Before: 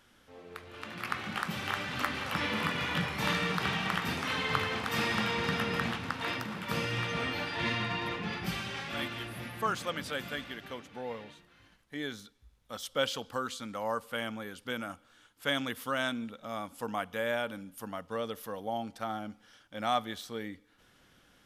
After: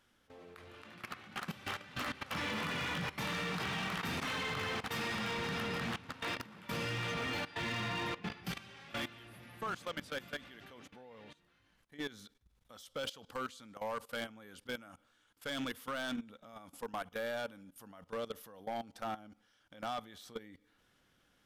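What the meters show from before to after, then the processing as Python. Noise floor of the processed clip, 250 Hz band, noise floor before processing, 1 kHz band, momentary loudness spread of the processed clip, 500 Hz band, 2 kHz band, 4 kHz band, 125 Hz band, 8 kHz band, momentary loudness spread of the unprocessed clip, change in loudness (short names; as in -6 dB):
-72 dBFS, -6.0 dB, -64 dBFS, -6.5 dB, 18 LU, -6.0 dB, -6.0 dB, -6.0 dB, -6.0 dB, -4.5 dB, 12 LU, -5.5 dB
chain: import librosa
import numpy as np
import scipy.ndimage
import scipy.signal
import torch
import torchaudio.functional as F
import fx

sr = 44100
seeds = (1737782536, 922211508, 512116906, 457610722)

y = fx.level_steps(x, sr, step_db=18)
y = np.clip(y, -10.0 ** (-33.0 / 20.0), 10.0 ** (-33.0 / 20.0))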